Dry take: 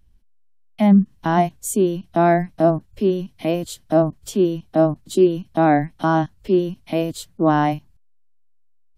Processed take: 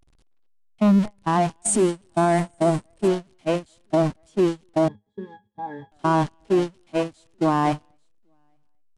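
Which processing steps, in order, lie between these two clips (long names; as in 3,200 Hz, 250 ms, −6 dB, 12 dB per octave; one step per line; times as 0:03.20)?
converter with a step at zero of −21.5 dBFS
single-tap delay 844 ms −18.5 dB
dynamic equaliser 1,000 Hz, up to +5 dB, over −34 dBFS, Q 4.3
far-end echo of a speakerphone 240 ms, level −14 dB
downsampling to 22,050 Hz
0:01.57–0:03.08: parametric band 8,600 Hz +13.5 dB 0.25 octaves
noise gate −17 dBFS, range −29 dB
0:04.88–0:05.92: resonances in every octave G#, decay 0.14 s
brickwall limiter −8.5 dBFS, peak gain reduction 5.5 dB
highs frequency-modulated by the lows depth 0.25 ms
level −3 dB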